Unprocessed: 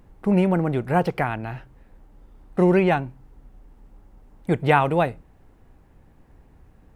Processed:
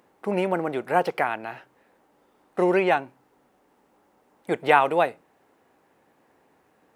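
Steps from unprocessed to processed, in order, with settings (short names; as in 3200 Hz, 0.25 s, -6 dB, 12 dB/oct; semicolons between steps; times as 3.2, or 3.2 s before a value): HPF 390 Hz 12 dB/oct; gain +1 dB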